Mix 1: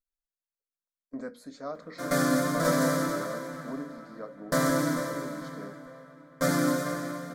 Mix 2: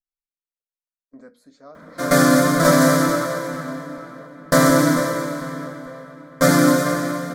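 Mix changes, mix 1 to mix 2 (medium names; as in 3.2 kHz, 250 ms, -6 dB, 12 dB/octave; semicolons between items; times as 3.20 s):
speech -6.5 dB; background +11.0 dB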